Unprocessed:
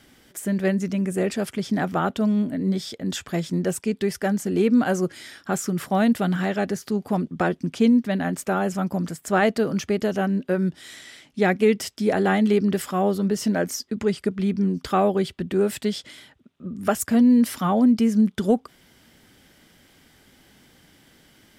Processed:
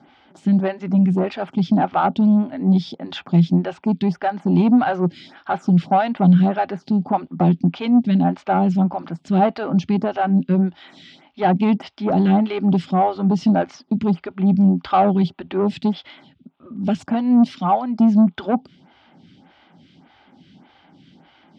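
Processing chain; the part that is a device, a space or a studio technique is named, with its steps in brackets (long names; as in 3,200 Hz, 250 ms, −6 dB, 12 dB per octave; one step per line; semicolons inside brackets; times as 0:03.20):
0:17.51–0:18.00: high-pass filter 510 Hz 6 dB per octave
vibe pedal into a guitar amplifier (phaser with staggered stages 1.7 Hz; tube saturation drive 18 dB, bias 0.2; loudspeaker in its box 89–4,100 Hz, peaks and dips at 170 Hz +9 dB, 260 Hz +4 dB, 460 Hz −8 dB, 820 Hz +9 dB, 1,800 Hz −7 dB)
level +6.5 dB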